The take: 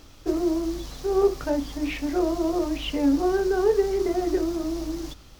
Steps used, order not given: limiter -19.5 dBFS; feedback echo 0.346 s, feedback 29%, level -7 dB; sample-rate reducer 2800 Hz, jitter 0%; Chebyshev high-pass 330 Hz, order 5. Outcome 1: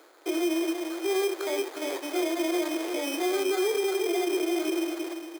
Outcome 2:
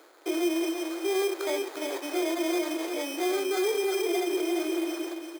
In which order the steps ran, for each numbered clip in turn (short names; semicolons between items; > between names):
feedback echo > sample-rate reducer > Chebyshev high-pass > limiter; sample-rate reducer > feedback echo > limiter > Chebyshev high-pass